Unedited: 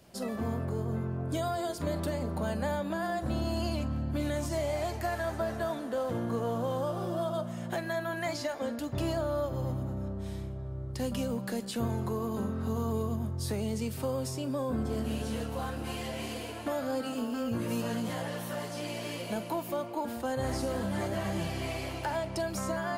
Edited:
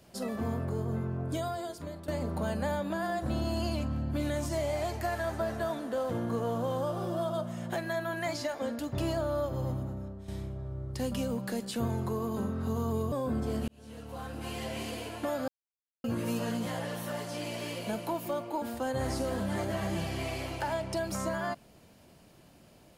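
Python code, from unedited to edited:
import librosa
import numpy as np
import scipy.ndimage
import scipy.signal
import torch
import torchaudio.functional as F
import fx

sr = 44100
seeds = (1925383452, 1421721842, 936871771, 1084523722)

y = fx.edit(x, sr, fx.fade_out_to(start_s=1.22, length_s=0.86, floor_db=-14.5),
    fx.fade_out_to(start_s=9.74, length_s=0.54, floor_db=-10.0),
    fx.cut(start_s=13.12, length_s=1.43),
    fx.fade_in_span(start_s=15.11, length_s=0.98),
    fx.silence(start_s=16.91, length_s=0.56), tone=tone)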